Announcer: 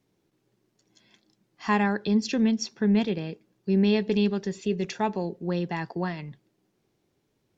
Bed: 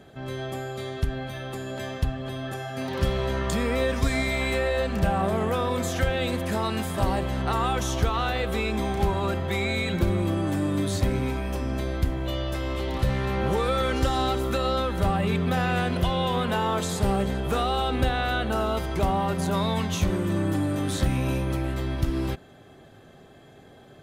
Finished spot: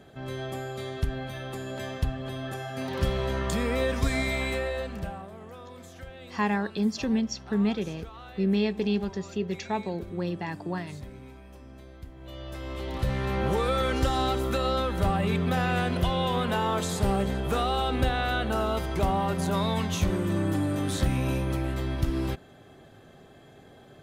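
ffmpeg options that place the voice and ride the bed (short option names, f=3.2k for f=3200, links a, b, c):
-filter_complex "[0:a]adelay=4700,volume=-3dB[a];[1:a]volume=15.5dB,afade=t=out:st=4.31:d=0.96:silence=0.141254,afade=t=in:st=12.14:d=1.21:silence=0.133352[b];[a][b]amix=inputs=2:normalize=0"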